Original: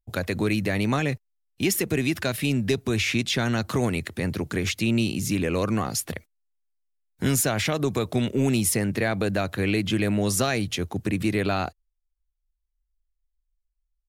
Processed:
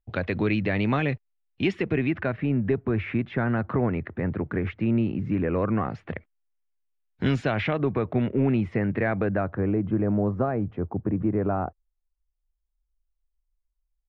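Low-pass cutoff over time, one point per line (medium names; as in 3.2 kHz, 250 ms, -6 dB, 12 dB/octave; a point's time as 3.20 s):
low-pass 24 dB/octave
1.64 s 3.2 kHz
2.44 s 1.8 kHz
5.49 s 1.8 kHz
7.24 s 3.7 kHz
7.97 s 2.1 kHz
9.18 s 2.1 kHz
9.72 s 1.2 kHz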